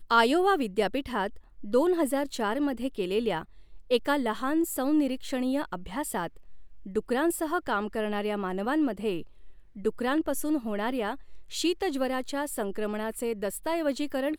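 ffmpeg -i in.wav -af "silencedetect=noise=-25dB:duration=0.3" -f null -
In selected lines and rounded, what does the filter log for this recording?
silence_start: 1.27
silence_end: 1.73 | silence_duration: 0.47
silence_start: 3.38
silence_end: 3.91 | silence_duration: 0.53
silence_start: 6.26
silence_end: 6.96 | silence_duration: 0.69
silence_start: 9.15
silence_end: 9.85 | silence_duration: 0.70
silence_start: 11.12
silence_end: 11.56 | silence_duration: 0.43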